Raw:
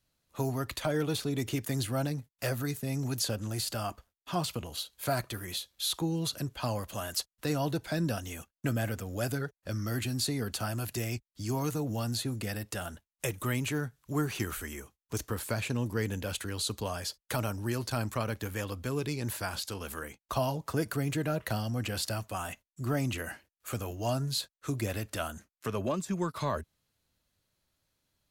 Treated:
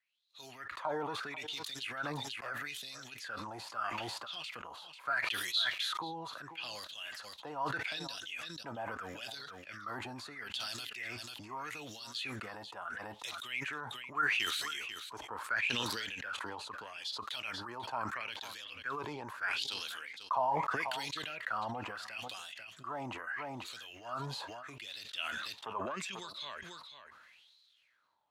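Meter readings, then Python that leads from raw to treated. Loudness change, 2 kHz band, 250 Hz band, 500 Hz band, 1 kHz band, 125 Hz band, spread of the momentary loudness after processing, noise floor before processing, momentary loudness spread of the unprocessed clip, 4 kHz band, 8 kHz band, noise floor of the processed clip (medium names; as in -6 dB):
-4.5 dB, +3.0 dB, -14.5 dB, -9.5 dB, +0.5 dB, -19.0 dB, 12 LU, under -85 dBFS, 7 LU, 0.0 dB, -10.5 dB, -61 dBFS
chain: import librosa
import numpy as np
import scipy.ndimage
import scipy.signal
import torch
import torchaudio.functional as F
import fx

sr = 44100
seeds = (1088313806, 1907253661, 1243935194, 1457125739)

p1 = fx.filter_lfo_bandpass(x, sr, shape='sine', hz=0.77, low_hz=860.0, high_hz=4000.0, q=7.9)
p2 = p1 + fx.echo_single(p1, sr, ms=492, db=-20.5, dry=0)
p3 = fx.sustainer(p2, sr, db_per_s=21.0)
y = p3 * librosa.db_to_amplitude(8.5)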